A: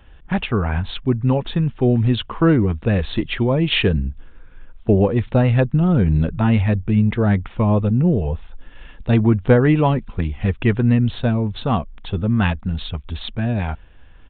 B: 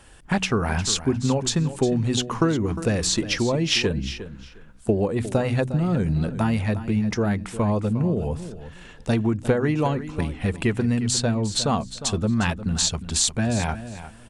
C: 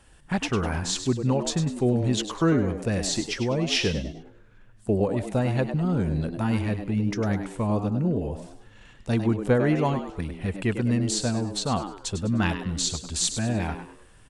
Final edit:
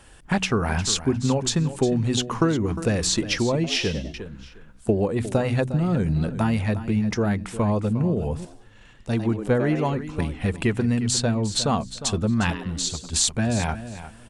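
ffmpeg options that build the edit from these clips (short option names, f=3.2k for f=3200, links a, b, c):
-filter_complex "[2:a]asplit=3[a][b][c];[1:a]asplit=4[d][e][f][g];[d]atrim=end=3.642[h];[a]atrim=start=3.638:end=4.142[i];[e]atrim=start=4.138:end=8.452[j];[b]atrim=start=8.448:end=9.932[k];[f]atrim=start=9.928:end=12.502[l];[c]atrim=start=12.498:end=13.132[m];[g]atrim=start=13.128[n];[h][i]acrossfade=d=0.004:c1=hsin:c2=hsin[o];[o][j]acrossfade=d=0.004:c1=hsin:c2=hsin[p];[p][k]acrossfade=d=0.004:c1=hsin:c2=hsin[q];[q][l]acrossfade=d=0.004:c1=hsin:c2=hsin[r];[r][m]acrossfade=d=0.004:c1=hsin:c2=hsin[s];[s][n]acrossfade=d=0.004:c1=hsin:c2=hsin"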